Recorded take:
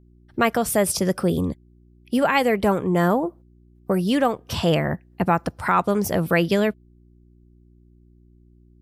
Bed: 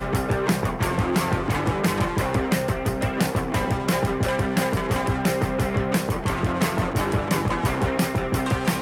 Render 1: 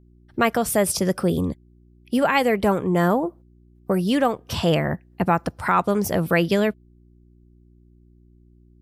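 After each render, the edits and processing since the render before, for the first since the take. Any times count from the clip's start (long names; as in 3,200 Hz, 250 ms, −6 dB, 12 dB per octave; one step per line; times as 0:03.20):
no processing that can be heard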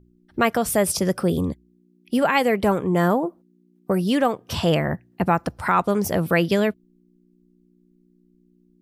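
hum removal 60 Hz, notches 2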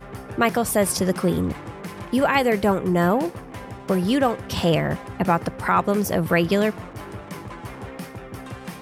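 mix in bed −12.5 dB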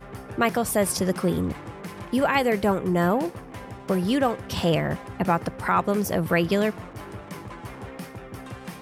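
level −2.5 dB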